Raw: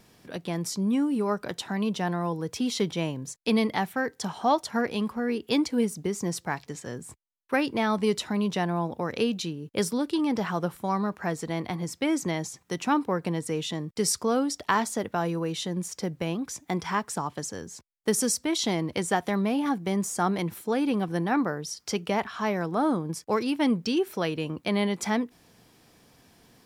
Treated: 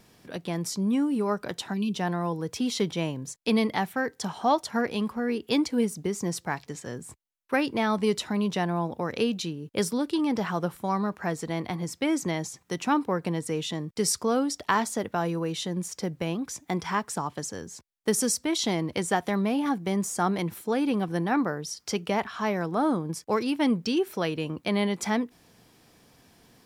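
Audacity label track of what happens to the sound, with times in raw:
1.730000	1.960000	gain on a spectral selection 410–2,300 Hz −17 dB

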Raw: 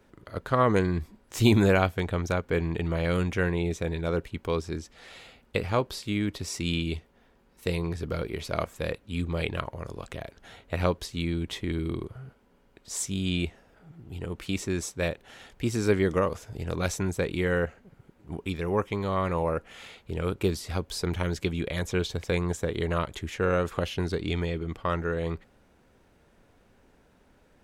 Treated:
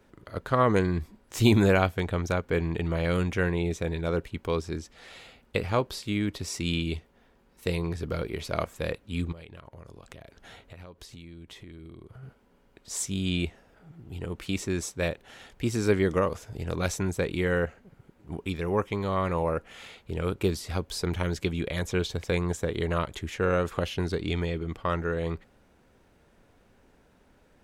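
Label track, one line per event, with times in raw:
9.320000	12.230000	downward compressor 12 to 1, threshold −42 dBFS

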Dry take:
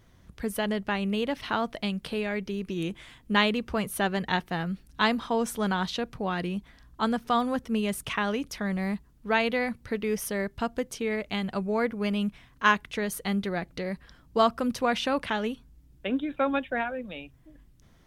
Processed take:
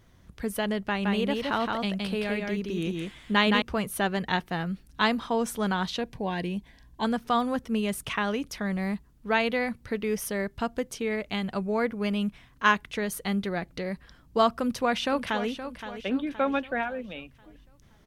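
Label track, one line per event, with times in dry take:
0.840000	3.620000	single-tap delay 168 ms −3 dB
6.010000	7.050000	Butterworth band-reject 1,300 Hz, Q 3.1
14.500000	15.480000	delay throw 520 ms, feedback 45%, level −10.5 dB

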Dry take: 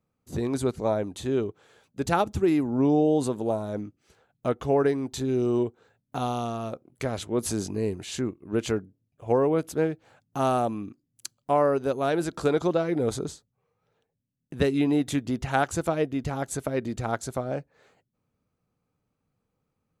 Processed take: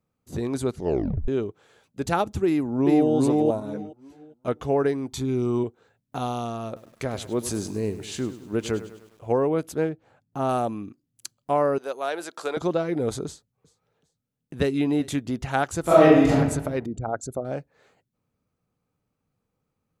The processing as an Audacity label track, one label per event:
0.750000	0.750000	tape stop 0.53 s
2.450000	3.090000	delay throw 410 ms, feedback 25%, level −1 dB
3.600000	4.480000	string-ensemble chorus
5.090000	5.640000	comb filter 0.9 ms, depth 50%
6.660000	9.280000	feedback echo at a low word length 101 ms, feedback 55%, word length 8 bits, level −13.5 dB
9.890000	10.490000	high-shelf EQ 2,000 Hz −9.5 dB
11.780000	12.570000	high-pass filter 570 Hz
13.260000	15.080000	repeating echo 384 ms, feedback 34%, level −22 dB
15.810000	16.310000	thrown reverb, RT60 1.1 s, DRR −11.5 dB
16.860000	17.450000	spectral envelope exaggerated exponent 2

